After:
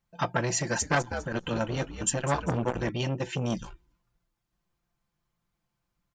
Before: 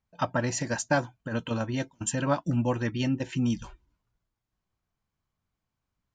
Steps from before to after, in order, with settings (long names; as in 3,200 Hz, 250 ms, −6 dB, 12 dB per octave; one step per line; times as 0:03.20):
comb filter 5.8 ms, depth 64%
0:00.56–0:02.89: echo with shifted repeats 201 ms, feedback 37%, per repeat −68 Hz, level −11 dB
saturating transformer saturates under 1,100 Hz
level +2 dB